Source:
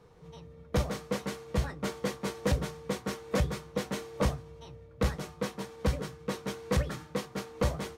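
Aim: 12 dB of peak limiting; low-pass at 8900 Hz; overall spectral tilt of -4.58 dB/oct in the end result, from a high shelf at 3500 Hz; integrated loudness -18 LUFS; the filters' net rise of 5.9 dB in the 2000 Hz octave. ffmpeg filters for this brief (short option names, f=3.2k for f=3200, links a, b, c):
-af "lowpass=8.9k,equalizer=f=2k:t=o:g=6,highshelf=f=3.5k:g=4.5,volume=21dB,alimiter=limit=-6dB:level=0:latency=1"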